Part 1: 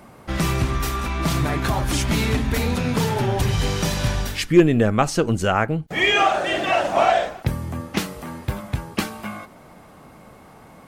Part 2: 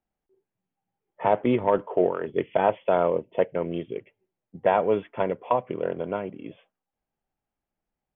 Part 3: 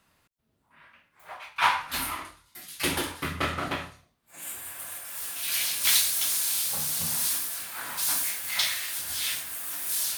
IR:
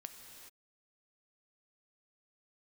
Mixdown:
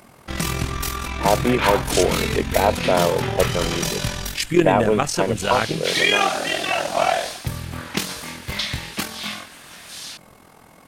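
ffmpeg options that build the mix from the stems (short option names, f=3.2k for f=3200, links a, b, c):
-filter_complex "[0:a]tremolo=f=42:d=0.667,volume=-1dB[a];[1:a]volume=2.5dB[b];[2:a]lowpass=4.2k,volume=-2.5dB[c];[a][b][c]amix=inputs=3:normalize=0,highshelf=f=2.2k:g=8,bandreject=f=50:t=h:w=6,bandreject=f=100:t=h:w=6"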